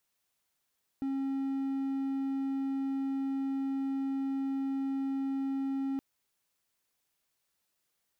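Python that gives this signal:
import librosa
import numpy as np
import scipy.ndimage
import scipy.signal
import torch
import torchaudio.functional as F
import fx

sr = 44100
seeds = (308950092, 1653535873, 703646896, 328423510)

y = 10.0 ** (-28.0 / 20.0) * (1.0 - 4.0 * np.abs(np.mod(271.0 * (np.arange(round(4.97 * sr)) / sr) + 0.25, 1.0) - 0.5))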